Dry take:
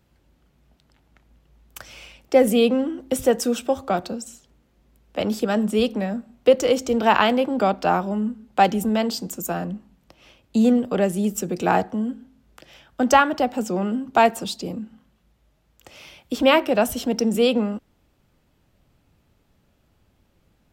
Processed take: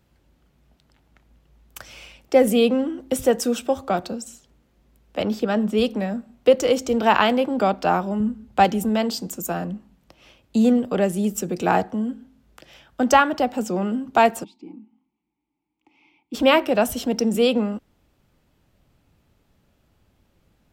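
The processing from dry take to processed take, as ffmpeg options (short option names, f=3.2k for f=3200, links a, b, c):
-filter_complex "[0:a]asettb=1/sr,asplit=3[a][b][c];[a]atrim=end=5.234[d];[b]atrim=start=5.23:end=5.78,asetpts=PTS-STARTPTS,afade=t=in:d=0.004:c=qsin,afade=t=out:st=0.546:d=0.004:c=qsin,equalizer=f=10k:w=0.94:g=-13[e];[c]atrim=start=5.776[f];[d][e]acrossfade=d=0.004:c1=hsin:c2=qsin[g];[g][f]acrossfade=d=0.004:c1=qsin:c2=hsin,asettb=1/sr,asplit=3[h][i][j];[h]atrim=end=8.204[k];[i]atrim=start=8.2:end=8.65,asetpts=PTS-STARTPTS,afade=t=in:d=0.004:c=qsin,afade=t=out:st=0.446:d=0.004:c=qsin,equalizer=f=81:t=o:w=1.2:g=14.5[l];[j]atrim=start=8.646[m];[k][l]acrossfade=d=0.004:c1=hsin:c2=qsin[n];[n][m]acrossfade=d=0.004:c1=qsin:c2=hsin,asplit=3[o][p][q];[o]afade=t=out:st=14.43:d=0.02[r];[p]asplit=3[s][t][u];[s]bandpass=f=300:t=q:w=8,volume=0dB[v];[t]bandpass=f=870:t=q:w=8,volume=-6dB[w];[u]bandpass=f=2.24k:t=q:w=8,volume=-9dB[x];[v][w][x]amix=inputs=3:normalize=0,afade=t=in:st=14.43:d=0.02,afade=t=out:st=16.33:d=0.02[y];[q]afade=t=in:st=16.33:d=0.02[z];[r][y][z]amix=inputs=3:normalize=0"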